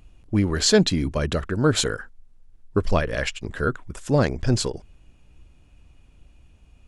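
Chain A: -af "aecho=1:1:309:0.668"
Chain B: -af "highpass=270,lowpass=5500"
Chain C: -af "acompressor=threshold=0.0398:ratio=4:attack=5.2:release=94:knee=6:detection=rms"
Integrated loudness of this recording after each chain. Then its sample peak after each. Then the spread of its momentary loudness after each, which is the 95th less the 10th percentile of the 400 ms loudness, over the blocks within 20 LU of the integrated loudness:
-22.5 LUFS, -26.0 LUFS, -32.5 LUFS; -5.0 dBFS, -6.0 dBFS, -17.0 dBFS; 10 LU, 11 LU, 9 LU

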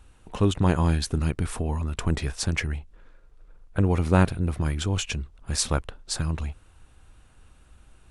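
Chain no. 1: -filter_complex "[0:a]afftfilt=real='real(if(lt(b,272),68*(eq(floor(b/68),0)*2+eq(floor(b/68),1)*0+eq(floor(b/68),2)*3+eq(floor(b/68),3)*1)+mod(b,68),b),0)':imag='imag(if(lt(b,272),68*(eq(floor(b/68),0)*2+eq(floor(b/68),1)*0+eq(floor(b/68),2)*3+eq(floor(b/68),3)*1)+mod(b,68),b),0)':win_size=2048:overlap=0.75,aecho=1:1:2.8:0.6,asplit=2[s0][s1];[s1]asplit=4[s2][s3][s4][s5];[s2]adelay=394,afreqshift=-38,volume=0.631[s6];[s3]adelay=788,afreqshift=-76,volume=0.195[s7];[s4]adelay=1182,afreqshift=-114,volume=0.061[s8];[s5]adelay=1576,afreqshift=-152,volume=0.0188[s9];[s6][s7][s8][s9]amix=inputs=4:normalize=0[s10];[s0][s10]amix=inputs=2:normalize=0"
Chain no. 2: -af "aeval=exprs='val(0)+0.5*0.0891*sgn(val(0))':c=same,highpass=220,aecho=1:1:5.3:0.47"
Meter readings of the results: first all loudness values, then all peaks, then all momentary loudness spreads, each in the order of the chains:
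-22.5 LUFS, -25.5 LUFS; -4.5 dBFS, -4.0 dBFS; 15 LU, 9 LU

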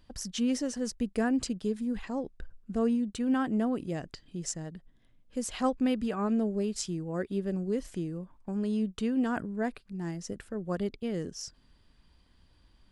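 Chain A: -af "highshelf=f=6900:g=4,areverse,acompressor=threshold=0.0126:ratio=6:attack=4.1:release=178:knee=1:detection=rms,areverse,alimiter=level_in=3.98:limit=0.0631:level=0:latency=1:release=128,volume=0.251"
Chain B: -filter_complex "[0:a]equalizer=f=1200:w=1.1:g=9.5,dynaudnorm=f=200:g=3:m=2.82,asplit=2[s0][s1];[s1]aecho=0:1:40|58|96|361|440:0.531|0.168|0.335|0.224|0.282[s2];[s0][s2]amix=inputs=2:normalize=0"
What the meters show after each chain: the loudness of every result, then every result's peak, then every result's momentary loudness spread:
-45.0 LUFS, -20.5 LUFS; -36.0 dBFS, -3.5 dBFS; 5 LU, 11 LU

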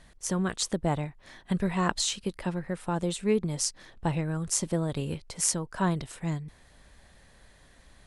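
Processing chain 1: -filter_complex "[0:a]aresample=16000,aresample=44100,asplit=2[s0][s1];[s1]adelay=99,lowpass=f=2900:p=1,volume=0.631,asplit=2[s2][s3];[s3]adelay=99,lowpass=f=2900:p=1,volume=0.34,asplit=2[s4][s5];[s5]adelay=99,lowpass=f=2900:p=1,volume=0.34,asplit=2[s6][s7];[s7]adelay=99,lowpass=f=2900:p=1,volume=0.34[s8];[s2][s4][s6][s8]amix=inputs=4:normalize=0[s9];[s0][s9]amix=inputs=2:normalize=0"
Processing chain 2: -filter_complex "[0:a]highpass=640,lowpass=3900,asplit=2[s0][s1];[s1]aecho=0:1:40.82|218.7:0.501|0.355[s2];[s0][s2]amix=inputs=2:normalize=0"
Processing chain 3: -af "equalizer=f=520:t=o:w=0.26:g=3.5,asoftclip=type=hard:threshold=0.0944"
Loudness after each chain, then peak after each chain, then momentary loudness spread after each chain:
-29.5 LUFS, -36.5 LUFS, -30.5 LUFS; -8.5 dBFS, -9.5 dBFS, -20.5 dBFS; 7 LU, 12 LU, 6 LU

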